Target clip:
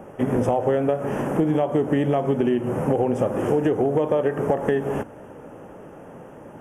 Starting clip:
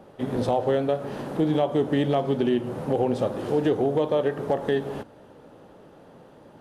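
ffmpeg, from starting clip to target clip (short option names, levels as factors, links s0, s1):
-af "acompressor=threshold=0.0562:ratio=6,asuperstop=centerf=4100:order=4:qfactor=1.3,volume=2.51"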